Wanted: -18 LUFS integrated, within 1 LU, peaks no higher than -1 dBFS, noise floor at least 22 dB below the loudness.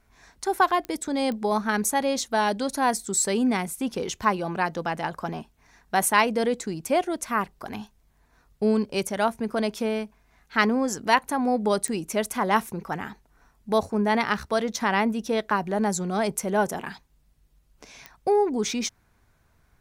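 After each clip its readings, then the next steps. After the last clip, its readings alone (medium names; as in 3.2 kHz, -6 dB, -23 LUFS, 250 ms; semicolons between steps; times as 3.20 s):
clicks found 4; loudness -25.5 LUFS; peak level -4.5 dBFS; loudness target -18.0 LUFS
-> de-click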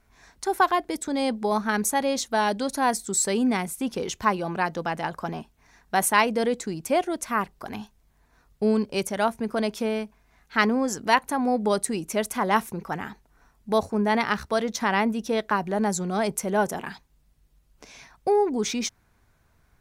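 clicks found 0; loudness -25.5 LUFS; peak level -4.5 dBFS; loudness target -18.0 LUFS
-> trim +7.5 dB; peak limiter -1 dBFS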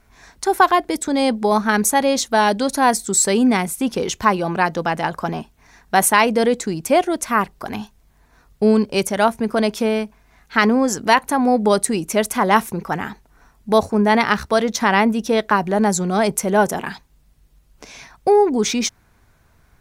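loudness -18.0 LUFS; peak level -1.0 dBFS; noise floor -56 dBFS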